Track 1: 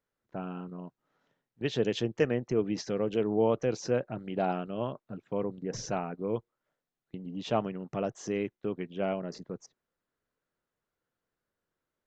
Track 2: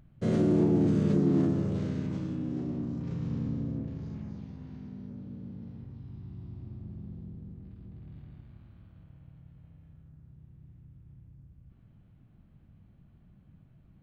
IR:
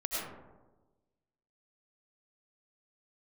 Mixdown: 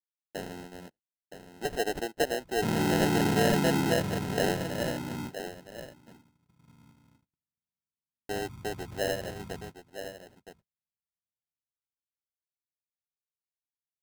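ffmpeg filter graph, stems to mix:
-filter_complex "[0:a]acrossover=split=240 4100:gain=0.0631 1 0.178[a][b][c];[a][b][c]amix=inputs=3:normalize=0,acrossover=split=370|3000[d][e][f];[d]acompressor=threshold=-47dB:ratio=3[g];[g][e][f]amix=inputs=3:normalize=0,volume=2.5dB,asplit=3[h][i][j];[h]atrim=end=5.32,asetpts=PTS-STARTPTS,afade=t=out:st=5.316:d=0.004:c=hsin[k];[i]atrim=start=5.32:end=8.29,asetpts=PTS-STARTPTS,volume=0[l];[j]atrim=start=8.29,asetpts=PTS-STARTPTS,afade=t=in:d=0.004:c=hsin[m];[k][l][m]concat=n=3:v=0:a=1,asplit=3[n][o][p];[o]volume=-10dB[q];[1:a]adelay=2400,volume=-2.5dB,asplit=2[r][s];[s]volume=-22dB[t];[p]apad=whole_len=724501[u];[r][u]sidechaingate=range=-30dB:threshold=-55dB:ratio=16:detection=peak[v];[q][t]amix=inputs=2:normalize=0,aecho=0:1:966:1[w];[n][v][w]amix=inputs=3:normalize=0,agate=range=-41dB:threshold=-56dB:ratio=16:detection=peak,acrusher=samples=38:mix=1:aa=0.000001"

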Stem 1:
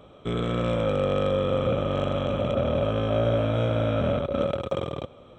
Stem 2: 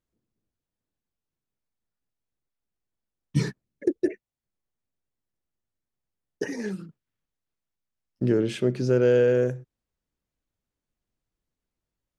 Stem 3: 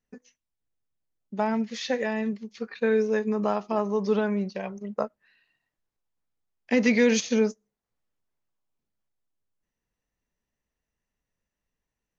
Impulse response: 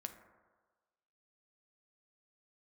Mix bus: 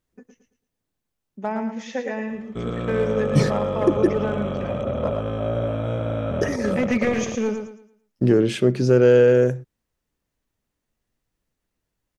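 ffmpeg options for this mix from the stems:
-filter_complex "[0:a]equalizer=f=3.4k:t=o:w=1.5:g=-6,adelay=2300,volume=-1dB[a];[1:a]acontrast=51,volume=0dB[b];[2:a]highpass=140,equalizer=f=4.3k:w=2:g=-13.5,aeval=exprs='clip(val(0),-1,0.126)':c=same,adelay=50,volume=-0.5dB,asplit=2[c][d];[d]volume=-7dB,aecho=0:1:111|222|333|444|555:1|0.32|0.102|0.0328|0.0105[e];[a][b][c][e]amix=inputs=4:normalize=0"

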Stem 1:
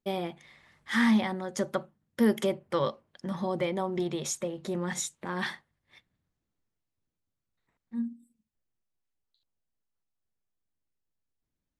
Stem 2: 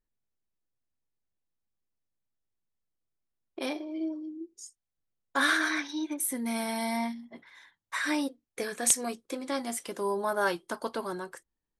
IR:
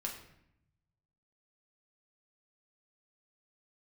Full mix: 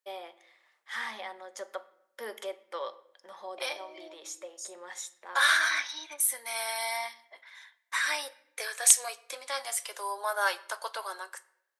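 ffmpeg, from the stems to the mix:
-filter_complex "[0:a]volume=-8.5dB,asplit=2[a][b];[b]volume=-8dB[c];[1:a]highpass=f=1.3k:p=1,volume=3dB,asplit=3[d][e][f];[e]volume=-10.5dB[g];[f]apad=whole_len=520212[h];[a][h]sidechaincompress=threshold=-38dB:ratio=8:attack=12:release=1110[i];[2:a]atrim=start_sample=2205[j];[c][g]amix=inputs=2:normalize=0[k];[k][j]afir=irnorm=-1:irlink=0[l];[i][d][l]amix=inputs=3:normalize=0,highpass=f=510:w=0.5412,highpass=f=510:w=1.3066"

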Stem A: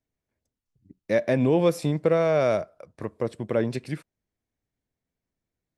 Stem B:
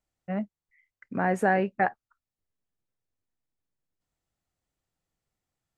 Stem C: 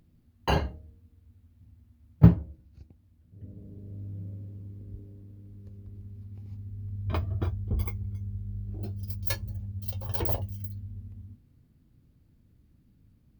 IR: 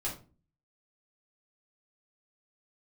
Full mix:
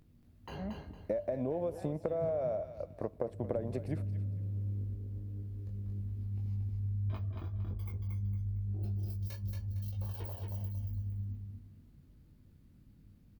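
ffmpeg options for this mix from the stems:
-filter_complex "[0:a]equalizer=f=640:w=1.6:g=13.5,acompressor=threshold=-18dB:ratio=6,volume=-5dB,asplit=3[a][b][c];[b]volume=-23.5dB[d];[1:a]alimiter=limit=-18dB:level=0:latency=1,adelay=300,volume=-10dB[e];[2:a]acompressor=threshold=-30dB:ratio=6,alimiter=level_in=10.5dB:limit=-24dB:level=0:latency=1:release=271,volume=-10.5dB,flanger=delay=19.5:depth=2.5:speed=1.7,volume=3dB,asplit=2[f][g];[g]volume=-4dB[h];[c]apad=whole_len=268084[i];[e][i]sidechaincompress=threshold=-39dB:ratio=8:attack=16:release=282[j];[a][j]amix=inputs=2:normalize=0,equalizer=f=4.3k:w=0.35:g=-12.5,acompressor=threshold=-31dB:ratio=6,volume=0dB[k];[d][h]amix=inputs=2:normalize=0,aecho=0:1:229|458|687|916:1|0.29|0.0841|0.0244[l];[f][k][l]amix=inputs=3:normalize=0"

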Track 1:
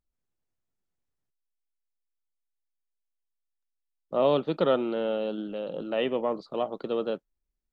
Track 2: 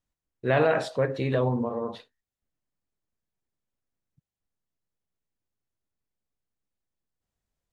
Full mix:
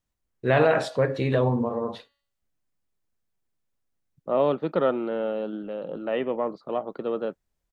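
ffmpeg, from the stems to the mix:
-filter_complex "[0:a]highshelf=f=2.5k:t=q:w=1.5:g=-6.5,adelay=150,volume=0.5dB[a];[1:a]bandreject=f=283.1:t=h:w=4,bandreject=f=566.2:t=h:w=4,bandreject=f=849.3:t=h:w=4,bandreject=f=1.1324k:t=h:w=4,bandreject=f=1.4155k:t=h:w=4,bandreject=f=1.6986k:t=h:w=4,bandreject=f=1.9817k:t=h:w=4,bandreject=f=2.2648k:t=h:w=4,bandreject=f=2.5479k:t=h:w=4,bandreject=f=2.831k:t=h:w=4,bandreject=f=3.1141k:t=h:w=4,bandreject=f=3.3972k:t=h:w=4,bandreject=f=3.6803k:t=h:w=4,bandreject=f=3.9634k:t=h:w=4,bandreject=f=4.2465k:t=h:w=4,bandreject=f=4.5296k:t=h:w=4,volume=2.5dB[b];[a][b]amix=inputs=2:normalize=0"

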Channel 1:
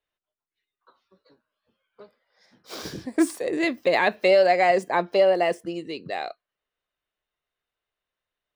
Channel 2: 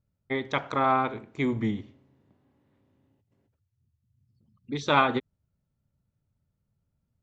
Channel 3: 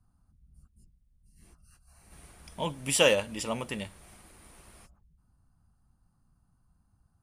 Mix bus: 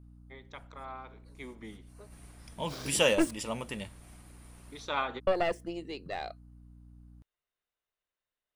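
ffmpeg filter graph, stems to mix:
-filter_complex "[0:a]aeval=exprs='(tanh(5.01*val(0)+0.75)-tanh(0.75))/5.01':c=same,volume=-2.5dB,asplit=3[a][b][c];[a]atrim=end=3.31,asetpts=PTS-STARTPTS,afade=t=out:st=3.306:d=0.004:c=hsin[d];[b]atrim=start=3.31:end=5.27,asetpts=PTS-STARTPTS,volume=0[e];[c]atrim=start=5.27,asetpts=PTS-STARTPTS,afade=t=in:d=0.004:c=hsin[f];[d][e][f]concat=n=3:v=0:a=1[g];[1:a]bass=f=250:g=-15,treble=f=4k:g=5,volume=-4dB,afade=t=in:st=1.05:d=0.79:silence=0.316228[h];[2:a]aeval=exprs='val(0)+0.00355*(sin(2*PI*60*n/s)+sin(2*PI*2*60*n/s)/2+sin(2*PI*3*60*n/s)/3+sin(2*PI*4*60*n/s)/4+sin(2*PI*5*60*n/s)/5)':c=same,volume=-3dB,asplit=2[i][j];[j]apad=whole_len=318465[k];[h][k]sidechaincompress=threshold=-56dB:ratio=4:attack=32:release=880[l];[g][l][i]amix=inputs=3:normalize=0"

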